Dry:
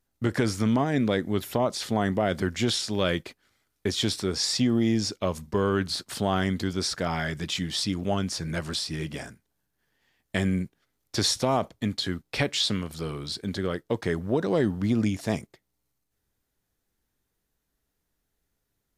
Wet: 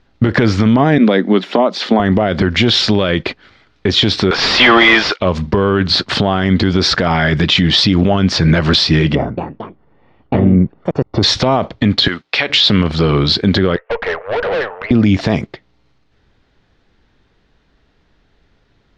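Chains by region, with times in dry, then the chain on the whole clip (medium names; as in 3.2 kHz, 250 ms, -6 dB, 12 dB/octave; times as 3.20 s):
0.98–2.00 s: Chebyshev high-pass 180 Hz, order 6 + upward expansion, over -34 dBFS
4.31–5.20 s: high-pass 950 Hz + overdrive pedal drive 32 dB, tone 1.8 kHz, clips at -14.5 dBFS + upward expansion 2.5:1, over -36 dBFS
9.15–11.23 s: Savitzky-Golay filter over 65 samples + ever faster or slower copies 225 ms, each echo +4 st, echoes 2, each echo -6 dB
12.08–12.50 s: high-pass 1.3 kHz 6 dB/octave + compression 3:1, threshold -35 dBFS
13.76–14.91 s: Chebyshev band-pass 460–2700 Hz, order 5 + upward compressor, threshold -47 dBFS + valve stage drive 38 dB, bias 0.5
whole clip: low-pass 4.2 kHz 24 dB/octave; compression, threshold -27 dBFS; loudness maximiser +24 dB; trim -1 dB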